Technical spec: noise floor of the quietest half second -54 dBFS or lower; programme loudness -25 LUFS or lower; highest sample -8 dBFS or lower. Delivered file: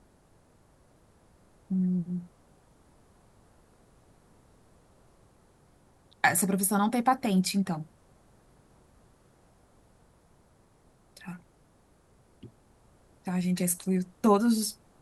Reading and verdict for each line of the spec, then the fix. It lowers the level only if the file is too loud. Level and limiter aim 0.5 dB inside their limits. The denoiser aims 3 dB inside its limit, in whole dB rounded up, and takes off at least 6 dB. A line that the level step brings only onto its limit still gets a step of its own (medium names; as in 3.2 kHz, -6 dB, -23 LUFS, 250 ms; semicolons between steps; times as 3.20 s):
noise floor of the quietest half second -63 dBFS: pass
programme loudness -27.5 LUFS: pass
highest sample -8.5 dBFS: pass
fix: none needed